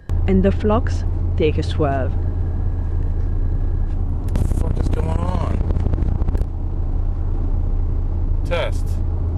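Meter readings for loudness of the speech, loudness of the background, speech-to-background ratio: -21.5 LUFS, -23.0 LUFS, 1.5 dB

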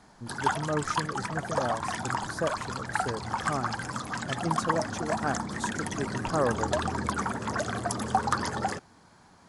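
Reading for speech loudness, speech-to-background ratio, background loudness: -35.0 LUFS, -3.5 dB, -31.5 LUFS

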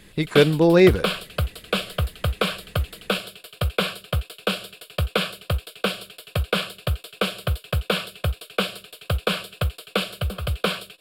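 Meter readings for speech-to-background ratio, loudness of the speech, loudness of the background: 9.5 dB, -17.5 LUFS, -27.0 LUFS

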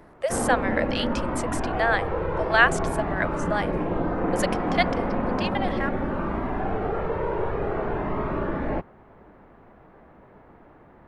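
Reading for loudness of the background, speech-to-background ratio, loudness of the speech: -27.5 LUFS, 0.5 dB, -27.0 LUFS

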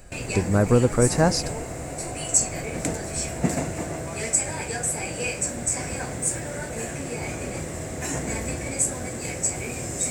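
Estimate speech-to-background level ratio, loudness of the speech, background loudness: 5.0 dB, -22.0 LUFS, -27.0 LUFS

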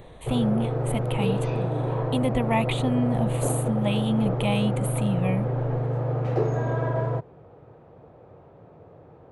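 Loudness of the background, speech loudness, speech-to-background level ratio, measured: -27.0 LUFS, -28.0 LUFS, -1.0 dB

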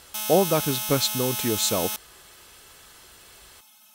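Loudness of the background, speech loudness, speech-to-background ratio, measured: -27.5 LUFS, -24.5 LUFS, 3.0 dB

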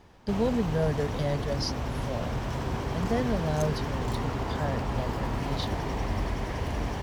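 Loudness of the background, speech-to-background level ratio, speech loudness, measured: -32.5 LUFS, 0.0 dB, -32.5 LUFS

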